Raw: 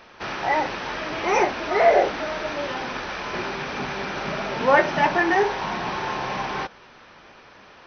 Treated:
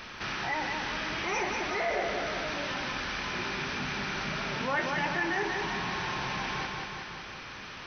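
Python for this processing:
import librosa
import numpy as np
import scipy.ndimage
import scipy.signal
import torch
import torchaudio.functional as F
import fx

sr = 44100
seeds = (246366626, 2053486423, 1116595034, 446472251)

p1 = fx.peak_eq(x, sr, hz=580.0, db=-10.5, octaves=2.0)
p2 = p1 + fx.echo_feedback(p1, sr, ms=185, feedback_pct=51, wet_db=-6.5, dry=0)
p3 = fx.env_flatten(p2, sr, amount_pct=50)
y = p3 * librosa.db_to_amplitude(-8.0)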